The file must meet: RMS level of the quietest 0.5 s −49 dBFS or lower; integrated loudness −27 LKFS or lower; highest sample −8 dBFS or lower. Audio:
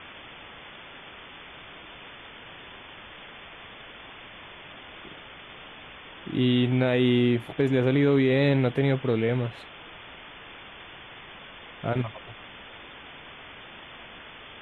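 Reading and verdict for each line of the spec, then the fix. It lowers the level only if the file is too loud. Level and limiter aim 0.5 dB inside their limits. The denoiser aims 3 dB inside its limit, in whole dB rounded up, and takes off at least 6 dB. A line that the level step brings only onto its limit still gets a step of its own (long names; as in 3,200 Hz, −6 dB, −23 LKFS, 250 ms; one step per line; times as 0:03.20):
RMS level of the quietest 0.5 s −45 dBFS: out of spec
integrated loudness −24.0 LKFS: out of spec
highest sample −10.5 dBFS: in spec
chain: broadband denoise 6 dB, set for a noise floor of −45 dBFS
level −3.5 dB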